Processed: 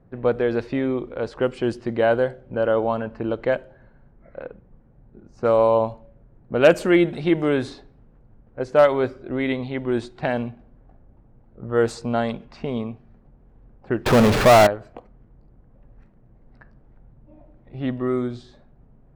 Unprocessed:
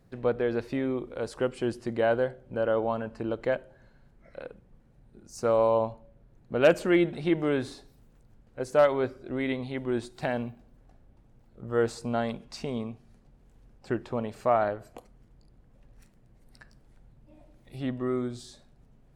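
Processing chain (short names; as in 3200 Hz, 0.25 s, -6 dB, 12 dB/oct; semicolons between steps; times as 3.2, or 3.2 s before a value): low-pass opened by the level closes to 1300 Hz, open at -22 dBFS; 14.06–14.67 power-law curve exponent 0.35; gain +6 dB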